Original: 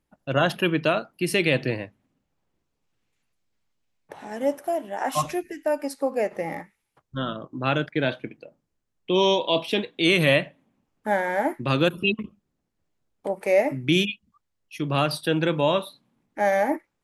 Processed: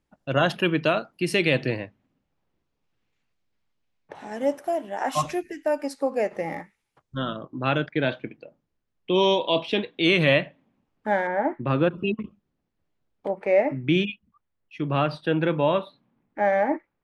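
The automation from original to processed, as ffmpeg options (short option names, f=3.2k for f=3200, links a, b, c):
-af "asetnsamples=n=441:p=0,asendcmd='1.8 lowpass f 4900;4.15 lowpass f 8700;7.4 lowpass f 4400;11.27 lowpass f 1700;12.2 lowpass f 4300;13.31 lowpass f 2500',lowpass=8.2k"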